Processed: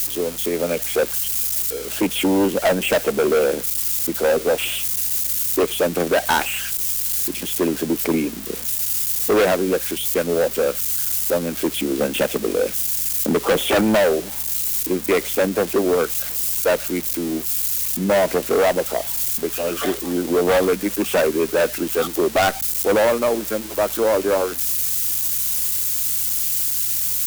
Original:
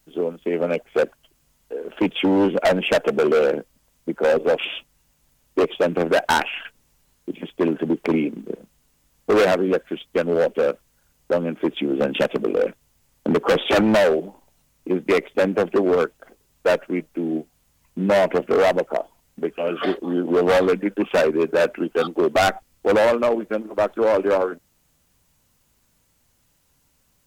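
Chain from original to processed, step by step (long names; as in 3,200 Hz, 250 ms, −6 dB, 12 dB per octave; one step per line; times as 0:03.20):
spike at every zero crossing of −17 dBFS
mains hum 60 Hz, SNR 25 dB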